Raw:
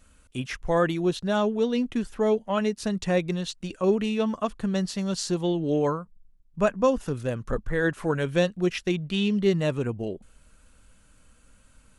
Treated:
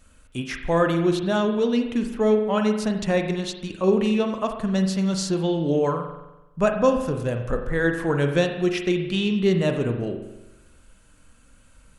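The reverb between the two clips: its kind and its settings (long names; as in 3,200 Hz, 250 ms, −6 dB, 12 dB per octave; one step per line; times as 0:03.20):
spring reverb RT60 1 s, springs 42 ms, chirp 45 ms, DRR 5 dB
level +2 dB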